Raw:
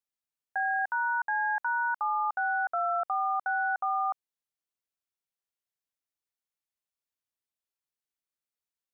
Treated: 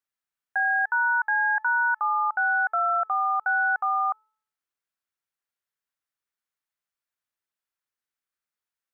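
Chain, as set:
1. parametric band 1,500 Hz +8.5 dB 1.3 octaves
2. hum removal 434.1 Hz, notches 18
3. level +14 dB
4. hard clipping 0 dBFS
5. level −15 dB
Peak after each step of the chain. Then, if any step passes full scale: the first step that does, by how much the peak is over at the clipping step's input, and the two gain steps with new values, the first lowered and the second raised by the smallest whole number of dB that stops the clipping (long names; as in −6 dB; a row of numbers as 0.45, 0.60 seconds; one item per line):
−15.5, −15.5, −1.5, −1.5, −16.5 dBFS
no step passes full scale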